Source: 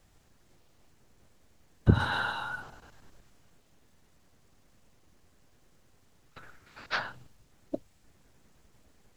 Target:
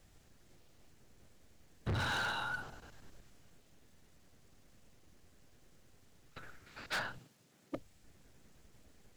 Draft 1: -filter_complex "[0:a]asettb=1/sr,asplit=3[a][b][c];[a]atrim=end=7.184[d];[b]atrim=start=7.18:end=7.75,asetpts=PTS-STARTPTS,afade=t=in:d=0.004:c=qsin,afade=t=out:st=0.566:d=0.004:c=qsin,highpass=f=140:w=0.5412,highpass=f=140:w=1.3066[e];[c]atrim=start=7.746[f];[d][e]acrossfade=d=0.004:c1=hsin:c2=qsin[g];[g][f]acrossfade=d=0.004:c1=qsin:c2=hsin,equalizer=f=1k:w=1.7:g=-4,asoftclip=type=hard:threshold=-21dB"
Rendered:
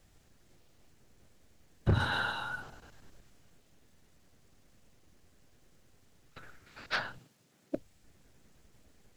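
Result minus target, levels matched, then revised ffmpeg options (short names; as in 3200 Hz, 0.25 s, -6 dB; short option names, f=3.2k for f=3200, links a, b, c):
hard clip: distortion -6 dB
-filter_complex "[0:a]asettb=1/sr,asplit=3[a][b][c];[a]atrim=end=7.184[d];[b]atrim=start=7.18:end=7.75,asetpts=PTS-STARTPTS,afade=t=in:d=0.004:c=qsin,afade=t=out:st=0.566:d=0.004:c=qsin,highpass=f=140:w=0.5412,highpass=f=140:w=1.3066[e];[c]atrim=start=7.746[f];[d][e]acrossfade=d=0.004:c1=hsin:c2=qsin[g];[g][f]acrossfade=d=0.004:c1=qsin:c2=hsin,equalizer=f=1k:w=1.7:g=-4,asoftclip=type=hard:threshold=-32.5dB"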